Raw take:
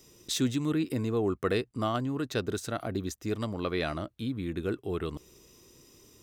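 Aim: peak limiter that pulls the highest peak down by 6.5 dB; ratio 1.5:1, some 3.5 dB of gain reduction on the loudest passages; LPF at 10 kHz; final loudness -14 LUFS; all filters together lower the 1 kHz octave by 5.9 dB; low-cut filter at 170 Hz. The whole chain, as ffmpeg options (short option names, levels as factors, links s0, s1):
-af "highpass=170,lowpass=10000,equalizer=f=1000:t=o:g=-8.5,acompressor=threshold=0.0178:ratio=1.5,volume=15.8,alimiter=limit=0.708:level=0:latency=1"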